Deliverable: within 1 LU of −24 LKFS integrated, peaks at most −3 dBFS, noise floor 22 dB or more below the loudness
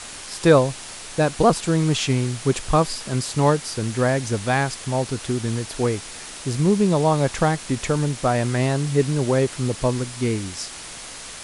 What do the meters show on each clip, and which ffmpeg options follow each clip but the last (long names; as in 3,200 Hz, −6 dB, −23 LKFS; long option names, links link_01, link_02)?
background noise floor −37 dBFS; target noise floor −44 dBFS; integrated loudness −22.0 LKFS; sample peak −2.5 dBFS; target loudness −24.0 LKFS
→ -af "afftdn=noise_reduction=7:noise_floor=-37"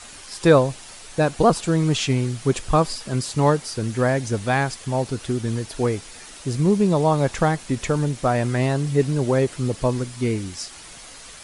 background noise floor −42 dBFS; target noise floor −44 dBFS
→ -af "afftdn=noise_reduction=6:noise_floor=-42"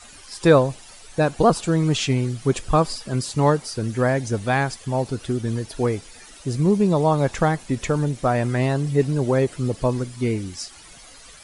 background noise floor −45 dBFS; integrated loudness −22.0 LKFS; sample peak −2.5 dBFS; target loudness −24.0 LKFS
→ -af "volume=-2dB"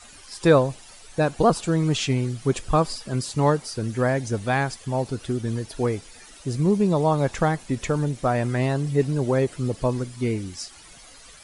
integrated loudness −24.0 LKFS; sample peak −4.5 dBFS; background noise floor −47 dBFS